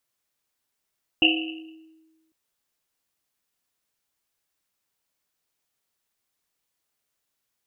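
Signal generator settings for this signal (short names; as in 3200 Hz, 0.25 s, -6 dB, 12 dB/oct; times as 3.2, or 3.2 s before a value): Risset drum, pitch 320 Hz, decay 1.36 s, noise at 2800 Hz, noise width 340 Hz, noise 55%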